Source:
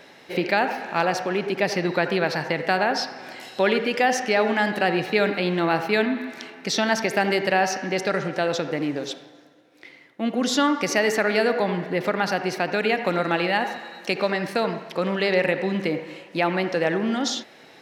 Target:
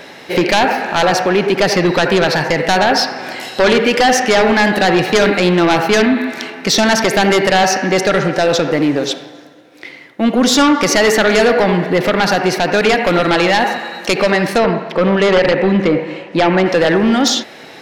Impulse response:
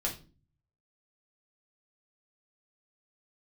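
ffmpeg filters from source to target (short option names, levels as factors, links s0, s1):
-filter_complex "[0:a]asettb=1/sr,asplit=3[s0][s1][s2];[s0]atrim=end=14.584[s3];[s1]atrim=start=14.58:end=16.66,asetpts=PTS-STARTPTS,afade=t=in:d=0.004:c=qsin,afade=t=out:st=2.076:d=0.004:c=qsin,aemphasis=mode=reproduction:type=75fm[s4];[s2]atrim=start=16.656[s5];[s3][s4]acrossfade=d=0.004:c1=hsin:c2=qsin[s6];[s6][s5]acrossfade=d=0.004:c1=qsin:c2=hsin,aeval=exprs='0.473*sin(PI/2*2.82*val(0)/0.473)':c=same"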